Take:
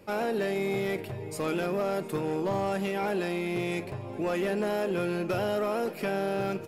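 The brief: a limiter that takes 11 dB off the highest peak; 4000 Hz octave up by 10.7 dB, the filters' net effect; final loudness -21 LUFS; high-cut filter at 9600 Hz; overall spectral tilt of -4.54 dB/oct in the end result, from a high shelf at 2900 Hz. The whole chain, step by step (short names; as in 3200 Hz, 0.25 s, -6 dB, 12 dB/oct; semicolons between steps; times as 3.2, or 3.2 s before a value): LPF 9600 Hz; high shelf 2900 Hz +7 dB; bell 4000 Hz +8.5 dB; gain +14.5 dB; limiter -12.5 dBFS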